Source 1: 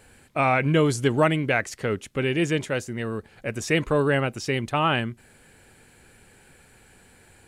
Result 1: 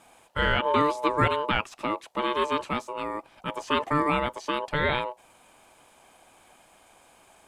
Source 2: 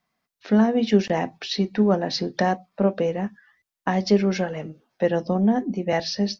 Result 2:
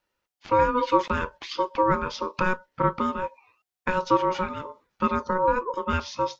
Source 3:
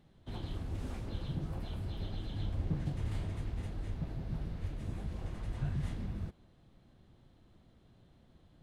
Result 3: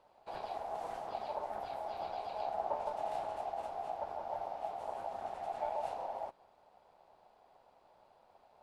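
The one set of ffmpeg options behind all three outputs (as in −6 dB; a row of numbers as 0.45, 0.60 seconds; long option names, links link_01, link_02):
-filter_complex "[0:a]acrossover=split=3900[link_01][link_02];[link_02]acompressor=threshold=-45dB:ratio=4:attack=1:release=60[link_03];[link_01][link_03]amix=inputs=2:normalize=0,aeval=exprs='val(0)*sin(2*PI*740*n/s)':channel_layout=same"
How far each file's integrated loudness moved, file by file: −3.0, −2.5, −0.5 LU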